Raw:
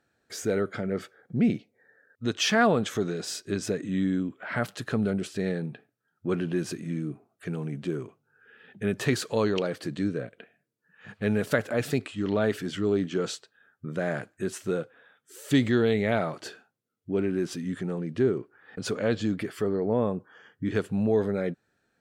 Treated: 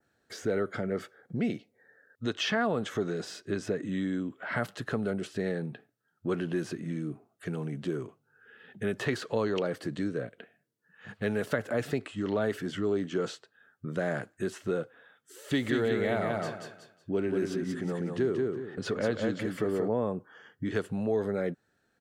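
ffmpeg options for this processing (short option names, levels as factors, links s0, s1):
-filter_complex "[0:a]asplit=3[s0][s1][s2];[s0]afade=t=out:st=15.49:d=0.02[s3];[s1]aecho=1:1:183|366|549|732:0.596|0.155|0.0403|0.0105,afade=t=in:st=15.49:d=0.02,afade=t=out:st=19.87:d=0.02[s4];[s2]afade=t=in:st=19.87:d=0.02[s5];[s3][s4][s5]amix=inputs=3:normalize=0,bandreject=f=2400:w=14,adynamicequalizer=threshold=0.00316:dfrequency=3900:dqfactor=1.2:tfrequency=3900:tqfactor=1.2:attack=5:release=100:ratio=0.375:range=2.5:mode=cutabove:tftype=bell,acrossover=split=350|4400[s6][s7][s8];[s6]acompressor=threshold=0.0224:ratio=4[s9];[s7]acompressor=threshold=0.0447:ratio=4[s10];[s8]acompressor=threshold=0.00224:ratio=4[s11];[s9][s10][s11]amix=inputs=3:normalize=0"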